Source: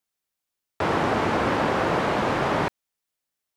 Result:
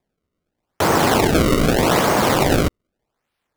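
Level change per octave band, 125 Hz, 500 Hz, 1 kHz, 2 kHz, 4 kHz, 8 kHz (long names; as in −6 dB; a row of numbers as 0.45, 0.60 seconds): +9.5, +7.0, +4.5, +5.0, +10.5, +18.5 decibels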